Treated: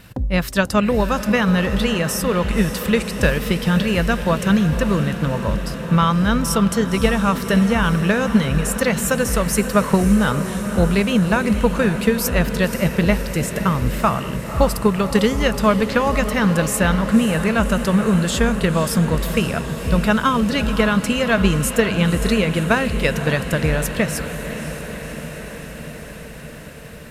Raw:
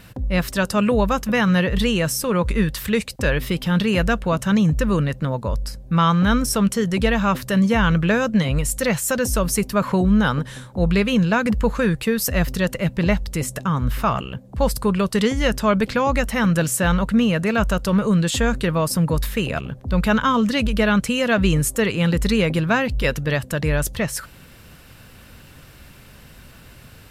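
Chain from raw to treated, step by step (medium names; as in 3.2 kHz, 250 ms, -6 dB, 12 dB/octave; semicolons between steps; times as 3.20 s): transient shaper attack +7 dB, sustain +2 dB; echo that smears into a reverb 544 ms, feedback 74%, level -10.5 dB; trim -1 dB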